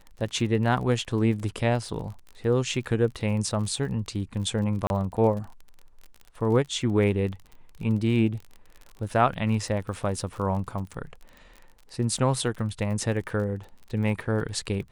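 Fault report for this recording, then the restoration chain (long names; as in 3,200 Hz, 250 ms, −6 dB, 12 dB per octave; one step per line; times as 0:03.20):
surface crackle 40 per second −35 dBFS
0:04.87–0:04.90: drop-out 31 ms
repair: click removal
repair the gap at 0:04.87, 31 ms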